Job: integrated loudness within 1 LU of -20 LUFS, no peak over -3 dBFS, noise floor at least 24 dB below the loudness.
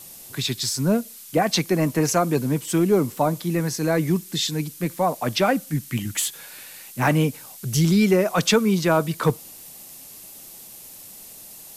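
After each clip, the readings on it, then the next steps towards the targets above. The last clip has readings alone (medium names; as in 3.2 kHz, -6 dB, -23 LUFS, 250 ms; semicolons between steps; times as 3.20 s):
noise floor -43 dBFS; noise floor target -46 dBFS; loudness -22.0 LUFS; peak level -7.0 dBFS; loudness target -20.0 LUFS
-> noise print and reduce 6 dB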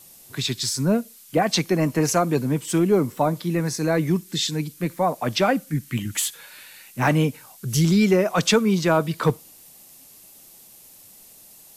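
noise floor -49 dBFS; loudness -22.0 LUFS; peak level -7.0 dBFS; loudness target -20.0 LUFS
-> trim +2 dB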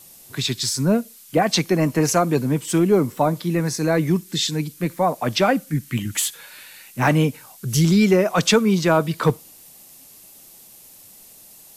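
loudness -20.0 LUFS; peak level -5.0 dBFS; noise floor -47 dBFS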